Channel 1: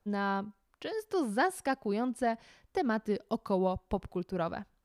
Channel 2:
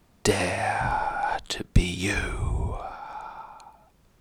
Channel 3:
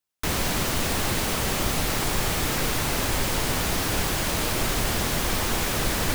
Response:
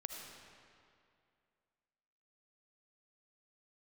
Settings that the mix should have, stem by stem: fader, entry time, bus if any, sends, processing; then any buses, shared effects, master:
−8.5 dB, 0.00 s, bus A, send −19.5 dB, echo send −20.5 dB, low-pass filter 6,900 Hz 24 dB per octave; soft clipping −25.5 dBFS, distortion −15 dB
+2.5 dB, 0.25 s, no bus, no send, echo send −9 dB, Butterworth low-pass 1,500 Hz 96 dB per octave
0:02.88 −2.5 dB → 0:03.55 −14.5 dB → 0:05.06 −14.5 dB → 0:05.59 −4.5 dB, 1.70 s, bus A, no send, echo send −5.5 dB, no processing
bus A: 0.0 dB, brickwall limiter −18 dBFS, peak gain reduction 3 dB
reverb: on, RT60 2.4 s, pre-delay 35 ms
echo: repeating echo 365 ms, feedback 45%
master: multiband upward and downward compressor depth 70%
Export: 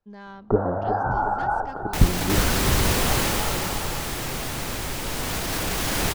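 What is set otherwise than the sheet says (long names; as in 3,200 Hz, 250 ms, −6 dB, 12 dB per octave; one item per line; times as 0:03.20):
stem 3 −2.5 dB → +6.0 dB
master: missing multiband upward and downward compressor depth 70%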